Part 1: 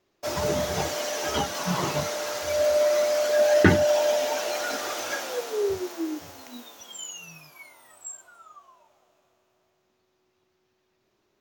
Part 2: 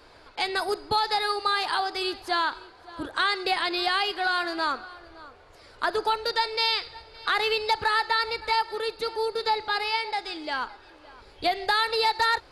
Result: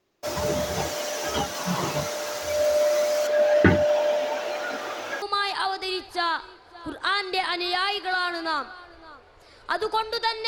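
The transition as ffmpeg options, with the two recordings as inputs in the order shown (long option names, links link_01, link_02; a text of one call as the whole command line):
ffmpeg -i cue0.wav -i cue1.wav -filter_complex "[0:a]asettb=1/sr,asplit=3[link_01][link_02][link_03];[link_01]atrim=end=3.274[link_04];[link_02]atrim=start=3.27:end=5.22,asetpts=PTS-STARTPTS,afade=type=in:duration=0.004:curve=qsin,afade=type=out:start_time=1.946:duration=0.004:curve=qsin,acrossover=split=3900[link_05][link_06];[link_06]acompressor=threshold=-50dB:ratio=4:attack=1:release=60[link_07];[link_05][link_07]amix=inputs=2:normalize=0[link_08];[link_03]atrim=start=5.216[link_09];[link_04][link_08]acrossfade=duration=0.004:curve1=hsin:curve2=qsin[link_10];[link_10][link_09]acrossfade=duration=0.004:curve1=qsin:curve2=hsin,apad=whole_dur=10.47,atrim=end=10.47,atrim=end=5.222[link_11];[1:a]atrim=start=1.348:end=6.6[link_12];[link_11][link_12]acrossfade=duration=0.004:curve1=hsin:curve2=hsin" out.wav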